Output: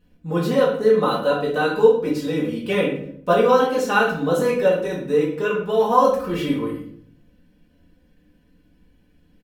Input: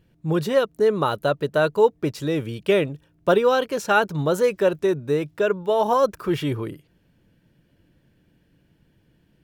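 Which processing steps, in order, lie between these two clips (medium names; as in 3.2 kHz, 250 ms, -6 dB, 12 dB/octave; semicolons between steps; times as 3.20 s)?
comb 4 ms, depth 81%; reverberation RT60 0.65 s, pre-delay 5 ms, DRR -4.5 dB; trim -6 dB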